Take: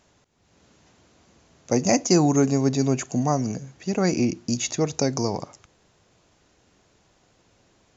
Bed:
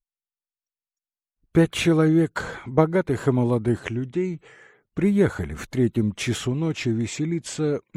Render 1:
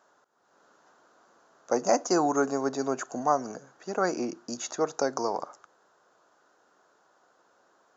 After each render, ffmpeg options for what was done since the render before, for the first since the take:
ffmpeg -i in.wav -af "highpass=470,highshelf=frequency=1800:width_type=q:width=3:gain=-7.5" out.wav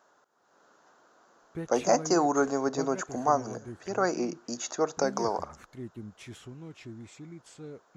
ffmpeg -i in.wav -i bed.wav -filter_complex "[1:a]volume=-20dB[link_01];[0:a][link_01]amix=inputs=2:normalize=0" out.wav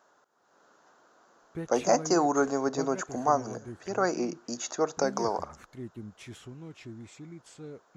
ffmpeg -i in.wav -af anull out.wav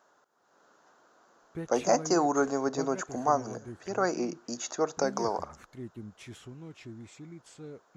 ffmpeg -i in.wav -af "volume=-1dB" out.wav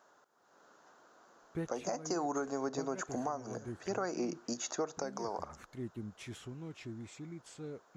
ffmpeg -i in.wav -af "acompressor=threshold=-30dB:ratio=4,alimiter=limit=-24dB:level=0:latency=1:release=395" out.wav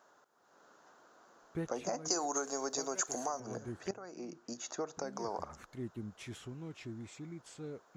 ffmpeg -i in.wav -filter_complex "[0:a]asettb=1/sr,asplit=3[link_01][link_02][link_03];[link_01]atrim=end=2.084[link_04];[link_02]atrim=start=2.08:end=3.4,asetpts=PTS-STARTPTS,afade=type=in:duration=0.004:curve=qsin,afade=type=out:start_time=1.316:duration=0.004:curve=qsin,bass=frequency=250:gain=-13,treble=frequency=4000:gain=14[link_05];[link_03]atrim=start=3.396[link_06];[link_04][link_05]acrossfade=duration=0.004:curve1=hsin:curve2=qsin[link_07];[link_07][link_06]acrossfade=duration=0.004:curve1=qsin:curve2=hsin,asplit=2[link_08][link_09];[link_08]atrim=end=3.91,asetpts=PTS-STARTPTS,afade=type=out:start_time=3.906:duration=0.004:curve=hsin:silence=0.158489[link_10];[link_09]atrim=start=3.91,asetpts=PTS-STARTPTS,afade=type=in:duration=1.39:silence=0.158489[link_11];[link_10][link_11]concat=n=2:v=0:a=1" out.wav

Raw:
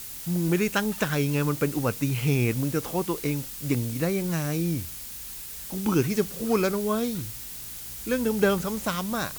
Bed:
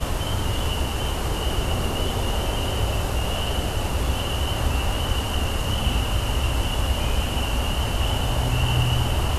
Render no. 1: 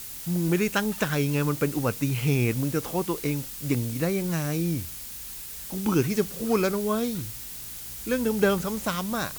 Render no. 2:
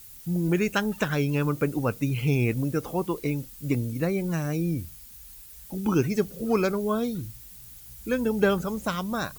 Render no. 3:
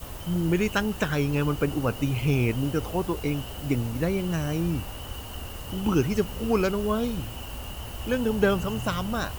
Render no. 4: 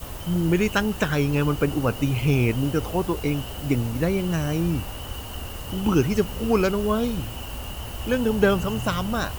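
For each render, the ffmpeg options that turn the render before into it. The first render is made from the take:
ffmpeg -i in.wav -af anull out.wav
ffmpeg -i in.wav -af "afftdn=noise_reduction=12:noise_floor=-39" out.wav
ffmpeg -i in.wav -i bed.wav -filter_complex "[1:a]volume=-13.5dB[link_01];[0:a][link_01]amix=inputs=2:normalize=0" out.wav
ffmpeg -i in.wav -af "volume=3dB" out.wav

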